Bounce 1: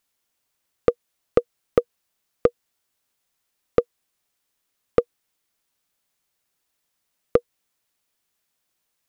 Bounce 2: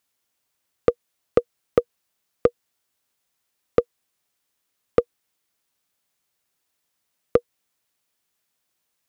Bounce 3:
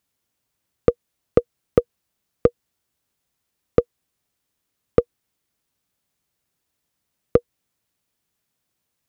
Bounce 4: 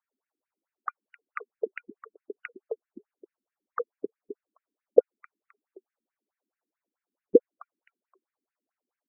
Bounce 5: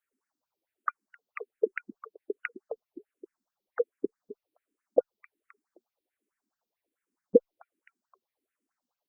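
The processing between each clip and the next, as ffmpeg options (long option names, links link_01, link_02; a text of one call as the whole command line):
ffmpeg -i in.wav -af "highpass=47" out.wav
ffmpeg -i in.wav -af "lowshelf=frequency=310:gain=11.5,volume=-2dB" out.wav
ffmpeg -i in.wav -filter_complex "[0:a]adynamicsmooth=sensitivity=6.5:basefreq=1600,asplit=4[link_01][link_02][link_03][link_04];[link_02]adelay=261,afreqshift=-32,volume=-15dB[link_05];[link_03]adelay=522,afreqshift=-64,volume=-24.6dB[link_06];[link_04]adelay=783,afreqshift=-96,volume=-34.3dB[link_07];[link_01][link_05][link_06][link_07]amix=inputs=4:normalize=0,afftfilt=real='re*between(b*sr/1024,260*pow(2100/260,0.5+0.5*sin(2*PI*4.6*pts/sr))/1.41,260*pow(2100/260,0.5+0.5*sin(2*PI*4.6*pts/sr))*1.41)':imag='im*between(b*sr/1024,260*pow(2100/260,0.5+0.5*sin(2*PI*4.6*pts/sr))/1.41,260*pow(2100/260,0.5+0.5*sin(2*PI*4.6*pts/sr))*1.41)':win_size=1024:overlap=0.75,volume=3dB" out.wav
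ffmpeg -i in.wav -filter_complex "[0:a]asplit=2[link_01][link_02];[link_02]afreqshift=-1.3[link_03];[link_01][link_03]amix=inputs=2:normalize=1,volume=5.5dB" out.wav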